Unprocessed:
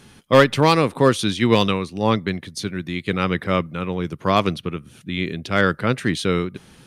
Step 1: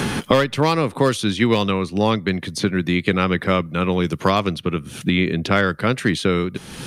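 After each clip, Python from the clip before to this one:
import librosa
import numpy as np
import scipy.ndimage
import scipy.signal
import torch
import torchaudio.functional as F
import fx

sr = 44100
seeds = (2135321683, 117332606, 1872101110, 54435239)

y = fx.band_squash(x, sr, depth_pct=100)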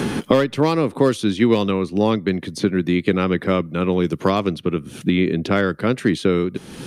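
y = fx.peak_eq(x, sr, hz=320.0, db=8.0, octaves=1.8)
y = y * 10.0 ** (-4.5 / 20.0)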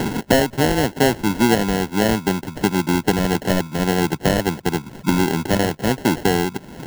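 y = fx.sample_hold(x, sr, seeds[0], rate_hz=1200.0, jitter_pct=0)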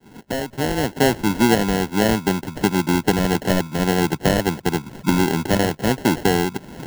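y = fx.fade_in_head(x, sr, length_s=1.11)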